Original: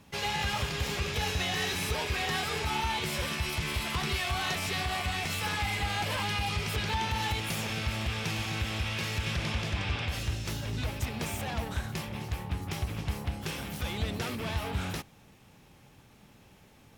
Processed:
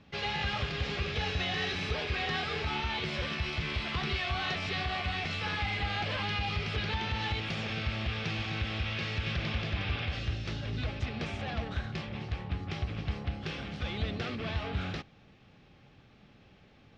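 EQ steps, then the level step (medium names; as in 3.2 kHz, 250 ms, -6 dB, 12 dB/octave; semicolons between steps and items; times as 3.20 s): low-pass 4.6 kHz 24 dB/octave; band-stop 940 Hz, Q 5.6; -1.0 dB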